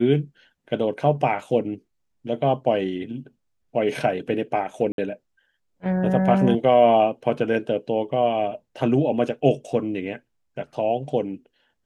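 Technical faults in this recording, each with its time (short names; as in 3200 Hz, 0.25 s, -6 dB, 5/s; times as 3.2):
4.92–4.98 gap 62 ms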